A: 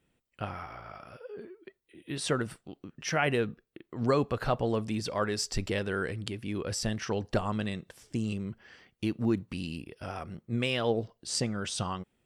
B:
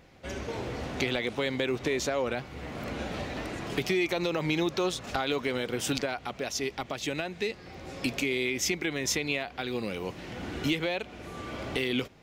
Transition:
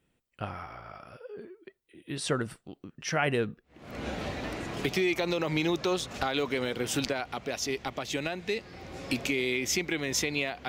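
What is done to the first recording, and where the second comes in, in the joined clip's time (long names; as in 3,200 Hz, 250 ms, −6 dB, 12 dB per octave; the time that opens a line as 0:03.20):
A
0:03.82: continue with B from 0:02.75, crossfade 0.46 s quadratic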